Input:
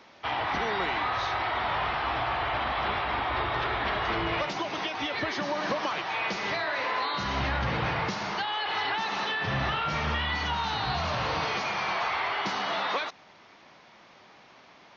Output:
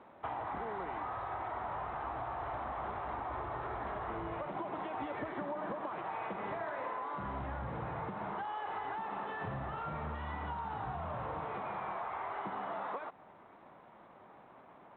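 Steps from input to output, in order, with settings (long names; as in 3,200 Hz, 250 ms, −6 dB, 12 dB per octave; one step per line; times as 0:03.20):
Chebyshev low-pass filter 1,000 Hz, order 2
downward compressor 12 to 1, threshold −36 dBFS, peak gain reduction 11.5 dB
0:04.35–0:06.94: echo with shifted repeats 86 ms, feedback 41%, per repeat +32 Hz, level −10.5 dB
G.726 32 kbit/s 8,000 Hz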